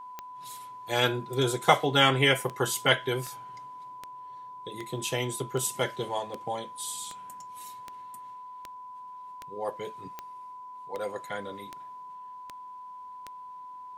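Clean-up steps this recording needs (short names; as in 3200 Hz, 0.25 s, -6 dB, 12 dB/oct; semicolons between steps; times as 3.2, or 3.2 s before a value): de-click; notch 1000 Hz, Q 30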